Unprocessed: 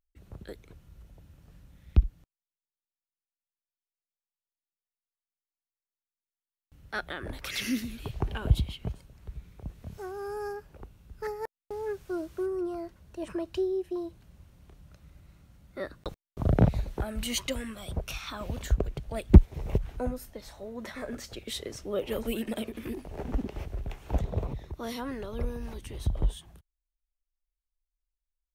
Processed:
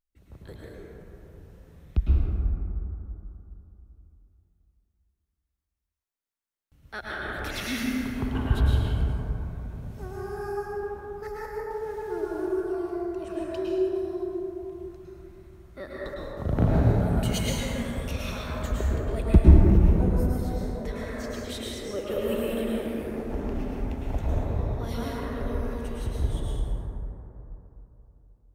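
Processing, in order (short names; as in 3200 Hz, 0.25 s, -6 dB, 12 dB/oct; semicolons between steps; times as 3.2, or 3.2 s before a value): plate-style reverb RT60 3.3 s, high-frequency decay 0.3×, pre-delay 95 ms, DRR -6.5 dB; gain -3.5 dB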